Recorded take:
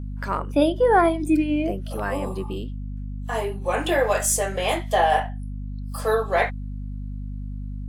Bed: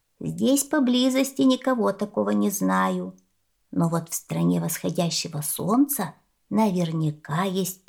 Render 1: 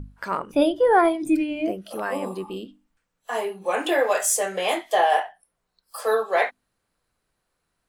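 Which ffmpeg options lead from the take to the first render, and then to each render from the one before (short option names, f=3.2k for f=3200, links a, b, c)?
-af "bandreject=f=50:t=h:w=6,bandreject=f=100:t=h:w=6,bandreject=f=150:t=h:w=6,bandreject=f=200:t=h:w=6,bandreject=f=250:t=h:w=6,bandreject=f=300:t=h:w=6"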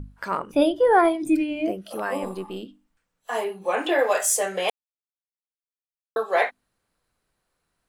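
-filter_complex "[0:a]asettb=1/sr,asplit=3[a][b][c];[a]atrim=end=2.234[d];[b]atrim=start=2.23:end=2.63,asetpts=PTS-STARTPTS,afade=t=in:d=0.004:c=qsin,afade=t=out:st=0.396:d=0.004:c=qsin,aeval=exprs='if(lt(val(0),0),0.708*val(0),val(0))':c=same[e];[c]atrim=start=2.626[f];[d][e]acrossfade=d=0.004:c1=hsin:c2=qsin[g];[g][f]acrossfade=d=0.004:c1=qsin:c2=hsin,asettb=1/sr,asplit=3[h][i][j];[h]atrim=end=3.444[k];[i]atrim=start=3.44:end=3.99,asetpts=PTS-STARTPTS,afade=t=in:d=0.004:c=qsin,afade=t=out:st=0.546:d=0.004:c=qsin,acrossover=split=4900[l][m];[m]acompressor=threshold=-52dB:ratio=4:attack=1:release=60[n];[l][n]amix=inputs=2:normalize=0[o];[j]atrim=start=3.986[p];[k][o]acrossfade=d=0.004:c1=hsin:c2=qsin[q];[q][p]acrossfade=d=0.004:c1=qsin:c2=hsin,asplit=3[r][s][t];[r]atrim=end=4.7,asetpts=PTS-STARTPTS,afade=t=out:st=4.696:d=0.004:c=hsin[u];[s]atrim=start=4.7:end=6.16,asetpts=PTS-STARTPTS,volume=0[v];[t]atrim=start=6.16,asetpts=PTS-STARTPTS,afade=t=in:d=0.004:c=hsin[w];[u][v][w]concat=n=3:v=0:a=1"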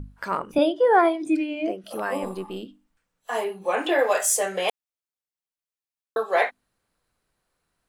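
-filter_complex "[0:a]asettb=1/sr,asplit=3[a][b][c];[a]atrim=end=0.584[d];[b]atrim=start=0.58:end=1.84,asetpts=PTS-STARTPTS,afade=t=in:d=0.004:c=qsin,afade=t=out:st=1.256:d=0.004:c=qsin,highpass=270,lowpass=7.2k[e];[c]atrim=start=1.836[f];[d][e]acrossfade=d=0.004:c1=hsin:c2=qsin[g];[g][f]acrossfade=d=0.004:c1=qsin:c2=hsin"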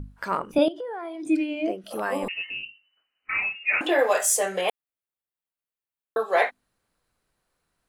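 -filter_complex "[0:a]asettb=1/sr,asplit=3[a][b][c];[a]atrim=end=0.684[d];[b]atrim=start=0.68:end=1.25,asetpts=PTS-STARTPTS,afade=t=in:d=0.004:c=qsin,afade=t=out:st=0.566:d=0.004:c=qsin,acompressor=threshold=-31dB:ratio=10:attack=3.2:release=140:knee=1:detection=peak[e];[c]atrim=start=1.246[f];[d][e]acrossfade=d=0.004:c1=hsin:c2=qsin[g];[g][f]acrossfade=d=0.004:c1=qsin:c2=hsin,asettb=1/sr,asplit=3[h][i][j];[h]atrim=end=2.284[k];[i]atrim=start=2.28:end=3.81,asetpts=PTS-STARTPTS,afade=t=in:d=0.004:c=qsin,afade=t=out:st=1.526:d=0.004:c=qsin,lowpass=f=2.6k:t=q:w=0.5098,lowpass=f=2.6k:t=q:w=0.6013,lowpass=f=2.6k:t=q:w=0.9,lowpass=f=2.6k:t=q:w=2.563,afreqshift=-3000[l];[j]atrim=start=3.806[m];[k][l]acrossfade=d=0.004:c1=hsin:c2=qsin[n];[n][m]acrossfade=d=0.004:c1=qsin:c2=hsin,asettb=1/sr,asplit=3[o][p][q];[o]atrim=end=4.614[r];[p]atrim=start=4.61:end=6.2,asetpts=PTS-STARTPTS,afade=t=in:d=0.004:c=qsin,afade=t=out:st=1.586:d=0.004:c=qsin,equalizer=f=5.7k:t=o:w=0.77:g=-13[s];[q]atrim=start=6.196[t];[r][s]acrossfade=d=0.004:c1=hsin:c2=qsin[u];[u][t]acrossfade=d=0.004:c1=qsin:c2=hsin"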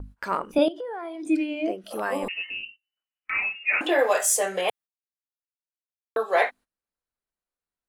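-af "agate=range=-19dB:threshold=-44dB:ratio=16:detection=peak,equalizer=f=130:w=2.6:g=-9.5"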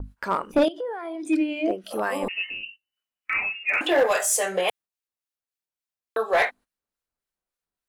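-filter_complex "[0:a]acrossover=split=1300[a][b];[a]aeval=exprs='val(0)*(1-0.5/2+0.5/2*cos(2*PI*3.5*n/s))':c=same[c];[b]aeval=exprs='val(0)*(1-0.5/2-0.5/2*cos(2*PI*3.5*n/s))':c=same[d];[c][d]amix=inputs=2:normalize=0,asplit=2[e][f];[f]aeval=exprs='0.112*(abs(mod(val(0)/0.112+3,4)-2)-1)':c=same,volume=-4.5dB[g];[e][g]amix=inputs=2:normalize=0"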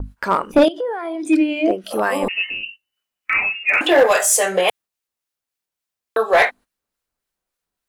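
-af "volume=7dB"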